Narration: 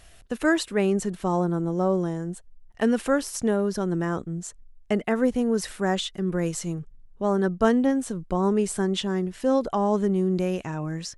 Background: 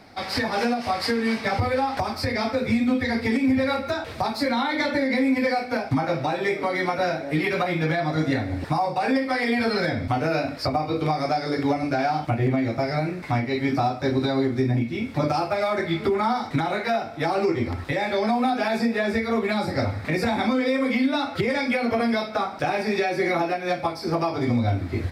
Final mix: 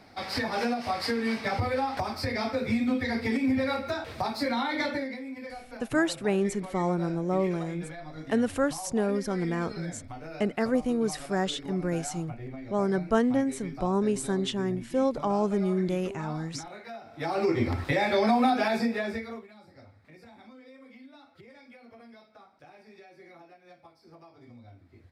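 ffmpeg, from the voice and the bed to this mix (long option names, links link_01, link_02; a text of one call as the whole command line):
ffmpeg -i stem1.wav -i stem2.wav -filter_complex "[0:a]adelay=5500,volume=-3.5dB[link_01];[1:a]volume=12.5dB,afade=type=out:start_time=4.85:duration=0.33:silence=0.223872,afade=type=in:start_time=17.02:duration=0.65:silence=0.133352,afade=type=out:start_time=18.47:duration=1:silence=0.0398107[link_02];[link_01][link_02]amix=inputs=2:normalize=0" out.wav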